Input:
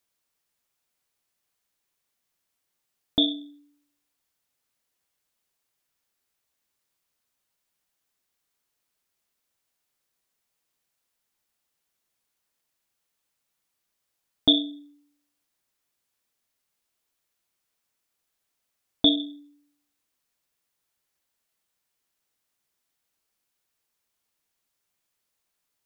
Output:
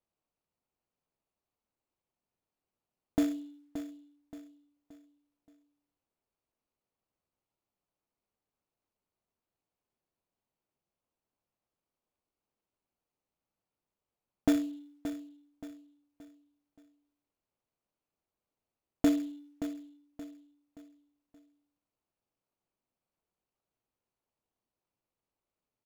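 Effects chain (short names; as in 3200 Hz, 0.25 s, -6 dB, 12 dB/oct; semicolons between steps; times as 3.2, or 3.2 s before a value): median filter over 25 samples; feedback echo 0.575 s, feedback 38%, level -11 dB; gain -2 dB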